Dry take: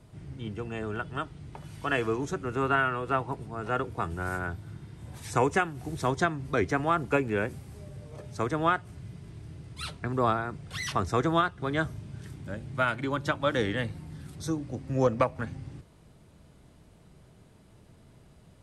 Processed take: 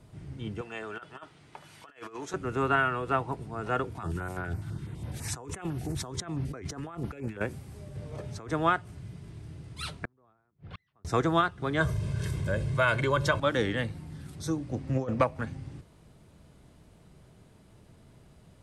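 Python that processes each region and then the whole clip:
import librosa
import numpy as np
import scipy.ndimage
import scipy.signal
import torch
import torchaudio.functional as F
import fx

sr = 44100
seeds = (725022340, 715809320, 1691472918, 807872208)

y = fx.chain(x, sr, fx.highpass(hz=1100.0, slope=6),
    fx.high_shelf(hz=4700.0, db=-6.5),
    fx.over_compress(threshold_db=-41.0, ratio=-0.5), at=(0.61, 2.34))
y = fx.chain(y, sr, fx.over_compress(threshold_db=-36.0, ratio=-1.0),
    fx.filter_held_notch(hz=12.0, low_hz=470.0, high_hz=7600.0), at=(3.95, 7.41))
y = fx.chain(y, sr, fx.over_compress(threshold_db=-38.0, ratio=-1.0),
    fx.high_shelf(hz=6000.0, db=-5.5), at=(7.95, 8.5))
y = fx.chain(y, sr, fx.gate_flip(shuts_db=-27.0, range_db=-39),
    fx.air_absorb(metres=340.0), at=(10.05, 11.05))
y = fx.chain(y, sr, fx.comb(ms=1.9, depth=0.65),
    fx.env_flatten(amount_pct=50), at=(11.8, 13.4))
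y = fx.chain(y, sr, fx.high_shelf(hz=7800.0, db=-5.5),
    fx.over_compress(threshold_db=-27.0, ratio=-0.5),
    fx.doppler_dist(depth_ms=0.13), at=(14.71, 15.21))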